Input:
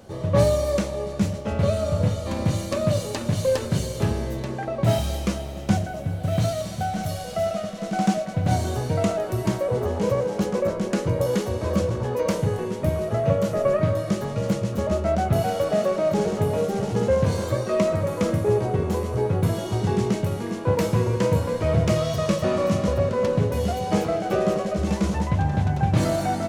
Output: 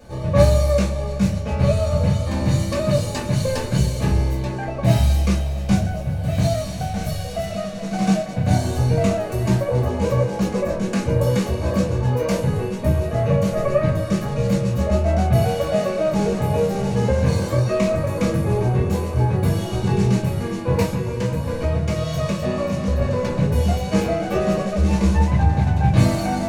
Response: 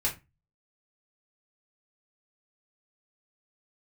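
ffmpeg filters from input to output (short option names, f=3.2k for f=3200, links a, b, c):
-filter_complex "[0:a]asettb=1/sr,asplit=3[a][b][c];[a]atrim=end=20.814[d];[b]atrim=start=20.81:end=23.01,asetpts=PTS-STARTPTS,afade=t=in:d=0.004:c=qsin,afade=t=out:st=2.196:d=0.004:c=qsin,acompressor=threshold=-22dB:ratio=6[e];[c]atrim=start=23.006[f];[d][e]acrossfade=d=0.004:c1=hsin:c2=qsin[g];[g][f]acrossfade=d=0.004:c1=qsin:c2=hsin[h];[1:a]atrim=start_sample=2205[i];[h][i]afir=irnorm=-1:irlink=0,volume=-3dB"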